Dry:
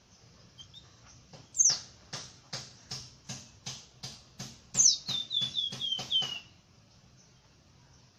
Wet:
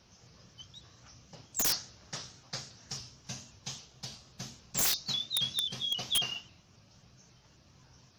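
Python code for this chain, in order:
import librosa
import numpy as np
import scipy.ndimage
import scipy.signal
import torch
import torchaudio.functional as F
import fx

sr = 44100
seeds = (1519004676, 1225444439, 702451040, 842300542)

y = (np.mod(10.0 ** (22.0 / 20.0) * x + 1.0, 2.0) - 1.0) / 10.0 ** (22.0 / 20.0)
y = fx.vibrato_shape(y, sr, shape='saw_up', rate_hz=3.7, depth_cents=100.0)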